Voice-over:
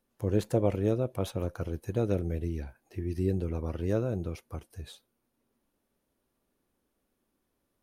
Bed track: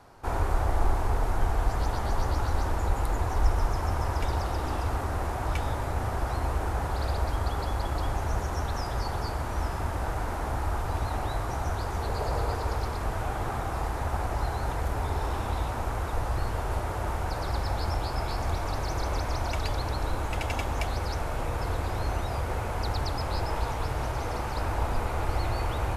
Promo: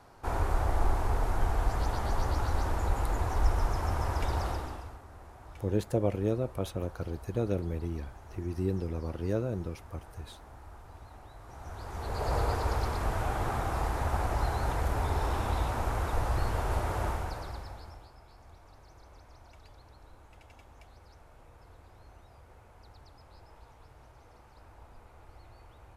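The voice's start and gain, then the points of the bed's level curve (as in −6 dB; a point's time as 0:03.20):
5.40 s, −2.0 dB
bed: 0:04.50 −2.5 dB
0:05.01 −20 dB
0:11.36 −20 dB
0:12.33 −0.5 dB
0:17.05 −0.5 dB
0:18.19 −25 dB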